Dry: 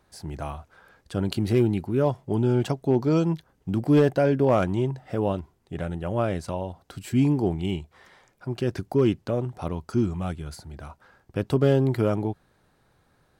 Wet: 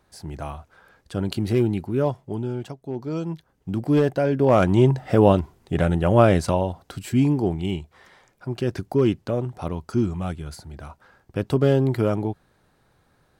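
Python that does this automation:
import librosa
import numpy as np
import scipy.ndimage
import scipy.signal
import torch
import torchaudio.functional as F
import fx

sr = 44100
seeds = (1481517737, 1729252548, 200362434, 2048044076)

y = fx.gain(x, sr, db=fx.line((2.04, 0.5), (2.78, -10.5), (3.7, -0.5), (4.29, -0.5), (4.88, 10.0), (6.43, 10.0), (7.24, 1.5)))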